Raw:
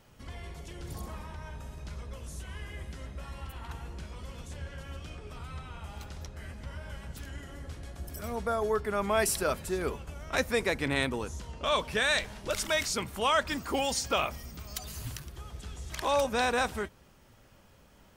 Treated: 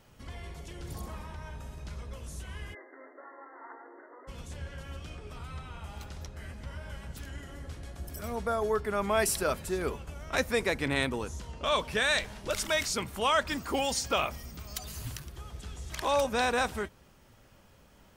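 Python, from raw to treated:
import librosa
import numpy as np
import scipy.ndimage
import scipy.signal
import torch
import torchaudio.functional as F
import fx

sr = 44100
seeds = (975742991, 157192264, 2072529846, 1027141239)

y = fx.brickwall_bandpass(x, sr, low_hz=260.0, high_hz=2100.0, at=(2.73, 4.27), fade=0.02)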